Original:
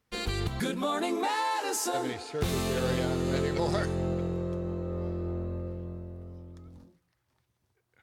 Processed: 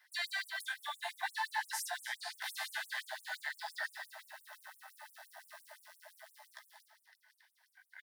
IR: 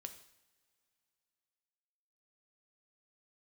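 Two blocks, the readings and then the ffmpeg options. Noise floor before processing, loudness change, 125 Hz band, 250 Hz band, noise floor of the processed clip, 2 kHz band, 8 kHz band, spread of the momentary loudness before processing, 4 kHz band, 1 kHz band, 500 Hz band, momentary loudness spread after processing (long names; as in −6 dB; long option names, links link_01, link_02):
−77 dBFS, −9.0 dB, below −40 dB, below −40 dB, −76 dBFS, 0.0 dB, −9.0 dB, 13 LU, −5.0 dB, −10.5 dB, −23.5 dB, 19 LU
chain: -filter_complex "[0:a]asplit=2[link_01][link_02];[1:a]atrim=start_sample=2205,asetrate=70560,aresample=44100,lowpass=6000[link_03];[link_02][link_03]afir=irnorm=-1:irlink=0,volume=1.5dB[link_04];[link_01][link_04]amix=inputs=2:normalize=0,acrusher=bits=7:mode=log:mix=0:aa=0.000001,aecho=1:1:253|506|759:0.251|0.0653|0.017,flanger=delay=3.3:depth=8:regen=82:speed=1.1:shape=sinusoidal,acrossover=split=200[link_05][link_06];[link_06]acompressor=threshold=-53dB:ratio=2.5[link_07];[link_05][link_07]amix=inputs=2:normalize=0,flanger=delay=15:depth=6.8:speed=0.47,superequalizer=8b=0.708:10b=0.447:11b=2.51:12b=0.631:15b=0.501,afftfilt=real='re*gte(b*sr/1024,590*pow(7900/590,0.5+0.5*sin(2*PI*5.8*pts/sr)))':imag='im*gte(b*sr/1024,590*pow(7900/590,0.5+0.5*sin(2*PI*5.8*pts/sr)))':win_size=1024:overlap=0.75,volume=16.5dB"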